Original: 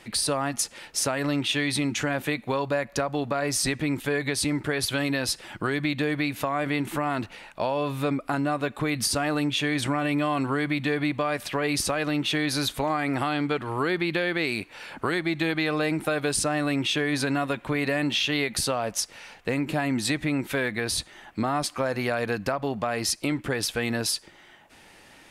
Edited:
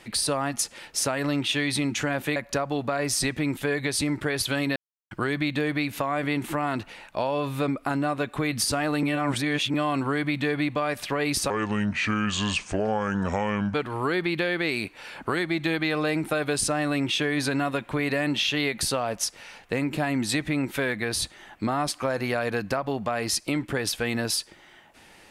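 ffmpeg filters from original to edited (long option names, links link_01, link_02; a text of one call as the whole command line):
ffmpeg -i in.wav -filter_complex "[0:a]asplit=8[link_01][link_02][link_03][link_04][link_05][link_06][link_07][link_08];[link_01]atrim=end=2.362[link_09];[link_02]atrim=start=2.788:end=5.19,asetpts=PTS-STARTPTS,afade=type=out:start_time=2.398:duration=0.004:curve=hsin[link_10];[link_03]atrim=start=5.19:end=5.54,asetpts=PTS-STARTPTS,volume=0[link_11];[link_04]atrim=start=5.54:end=9.462,asetpts=PTS-STARTPTS,afade=type=in:duration=0.004:curve=hsin[link_12];[link_05]atrim=start=9.458:end=10.172,asetpts=PTS-STARTPTS,areverse[link_13];[link_06]atrim=start=10.168:end=11.934[link_14];[link_07]atrim=start=11.93:end=13.5,asetpts=PTS-STARTPTS,asetrate=30870,aresample=44100[link_15];[link_08]atrim=start=13.496[link_16];[link_10][link_11][link_12]concat=n=3:v=0:a=1[link_17];[link_09][link_17]acrossfade=duration=0.004:curve1=hsin:curve2=hsin[link_18];[link_18][link_13]acrossfade=duration=0.004:curve1=hsin:curve2=hsin[link_19];[link_19][link_14]acrossfade=duration=0.004:curve1=hsin:curve2=hsin[link_20];[link_20][link_15]acrossfade=duration=0.004:curve1=hsin:curve2=hsin[link_21];[link_21][link_16]acrossfade=duration=0.004:curve1=hsin:curve2=hsin" out.wav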